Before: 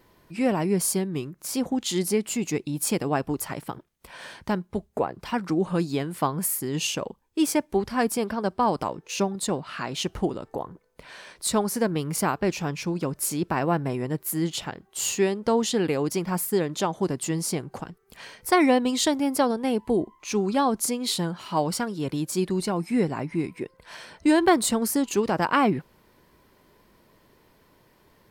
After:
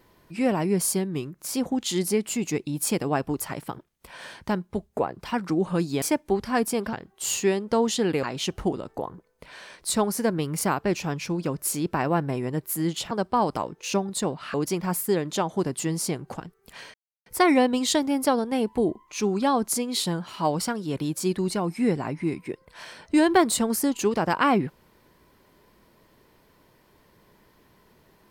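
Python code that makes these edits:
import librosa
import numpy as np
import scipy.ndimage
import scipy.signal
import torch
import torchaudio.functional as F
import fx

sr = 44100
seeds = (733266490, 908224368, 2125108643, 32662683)

y = fx.edit(x, sr, fx.cut(start_s=6.02, length_s=1.44),
    fx.swap(start_s=8.37, length_s=1.43, other_s=14.68, other_length_s=1.3),
    fx.insert_silence(at_s=18.38, length_s=0.32), tone=tone)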